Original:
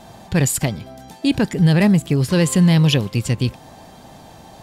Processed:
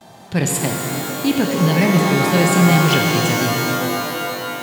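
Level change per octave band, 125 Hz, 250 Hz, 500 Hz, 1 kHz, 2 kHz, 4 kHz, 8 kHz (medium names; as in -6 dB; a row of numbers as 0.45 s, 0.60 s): -1.5 dB, +0.5 dB, +4.5 dB, +12.5 dB, +7.5 dB, +4.0 dB, +3.0 dB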